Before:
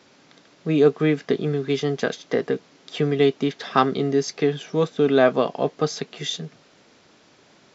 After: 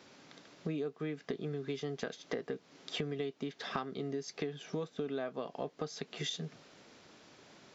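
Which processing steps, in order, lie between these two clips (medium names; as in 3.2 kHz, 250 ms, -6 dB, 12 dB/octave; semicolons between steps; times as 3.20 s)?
compression 10:1, threshold -31 dBFS, peak gain reduction 20.5 dB; trim -3.5 dB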